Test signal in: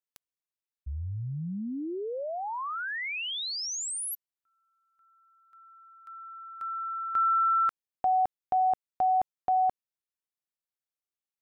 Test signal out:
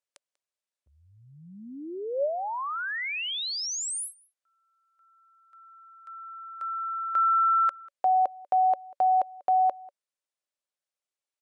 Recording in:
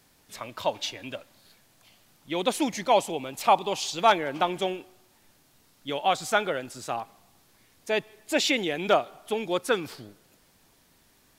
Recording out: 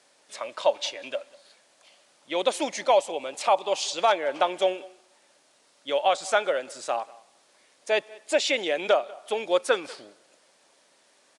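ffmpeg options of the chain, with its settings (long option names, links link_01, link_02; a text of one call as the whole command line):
ffmpeg -i in.wav -filter_complex "[0:a]highpass=420,equalizer=frequency=570:width_type=o:width=0.26:gain=9,alimiter=limit=-12.5dB:level=0:latency=1:release=322,asplit=2[link_01][link_02];[link_02]adelay=192.4,volume=-23dB,highshelf=frequency=4000:gain=-4.33[link_03];[link_01][link_03]amix=inputs=2:normalize=0,aresample=22050,aresample=44100,volume=2dB" out.wav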